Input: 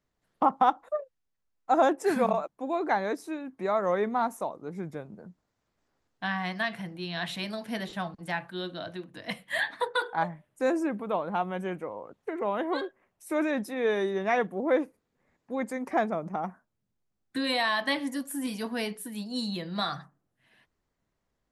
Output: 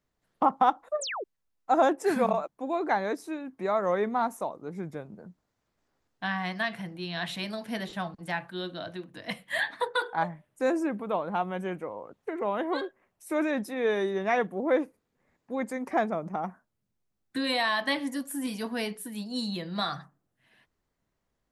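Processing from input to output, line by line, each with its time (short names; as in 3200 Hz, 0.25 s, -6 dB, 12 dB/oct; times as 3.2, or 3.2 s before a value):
1.01–1.24 painted sound fall 330–9100 Hz -34 dBFS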